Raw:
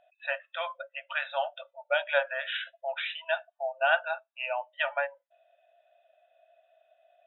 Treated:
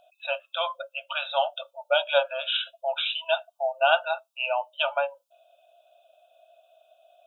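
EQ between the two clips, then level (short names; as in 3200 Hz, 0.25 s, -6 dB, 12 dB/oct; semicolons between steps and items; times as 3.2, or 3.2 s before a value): Butterworth band-stop 1900 Hz, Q 1.4; high shelf 2900 Hz +10 dB; +5.0 dB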